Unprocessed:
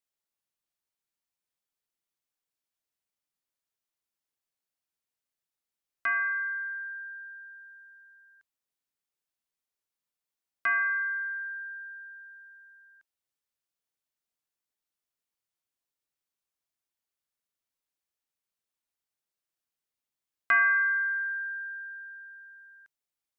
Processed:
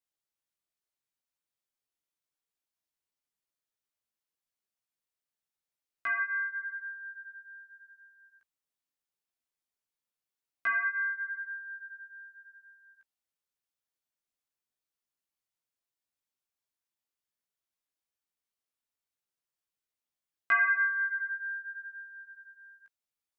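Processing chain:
chorus effect 0.86 Hz, delay 15.5 ms, depth 2.7 ms

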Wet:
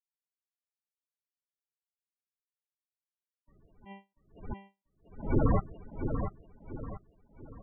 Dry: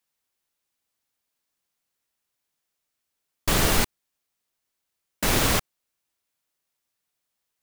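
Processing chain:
0:03.61–0:05.36: hum removal 197 Hz, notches 26
noise gate with hold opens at −17 dBFS
spectral peaks only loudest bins 16
on a send: repeating echo 688 ms, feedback 39%, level −7 dB
on the sum: level that may rise only so fast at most 140 dB per second
level +1.5 dB

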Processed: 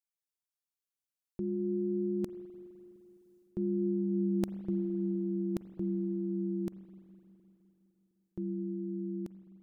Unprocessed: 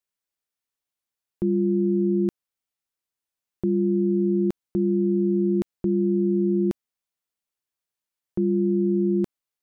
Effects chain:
source passing by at 0:04.08, 7 m/s, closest 5.8 metres
bass and treble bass +2 dB, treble +7 dB
reversed playback
downward compressor 6 to 1, threshold −30 dBFS, peak gain reduction 11 dB
reversed playback
spring reverb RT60 3.2 s, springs 42/51 ms, chirp 60 ms, DRR 11.5 dB

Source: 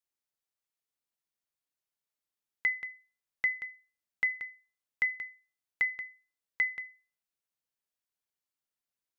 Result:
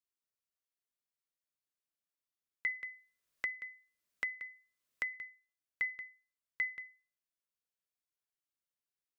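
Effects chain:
Butterworth band-reject 830 Hz, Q 4.5
0:02.67–0:05.14: multiband upward and downward compressor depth 70%
level −6 dB

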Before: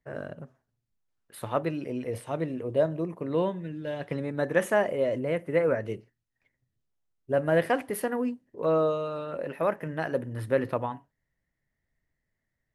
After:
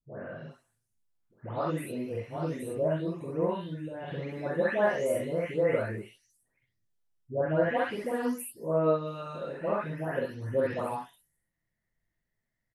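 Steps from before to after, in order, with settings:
every frequency bin delayed by itself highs late, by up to 442 ms
on a send: ambience of single reflections 45 ms −3.5 dB, 64 ms −3 dB
on the sum: level −4 dB

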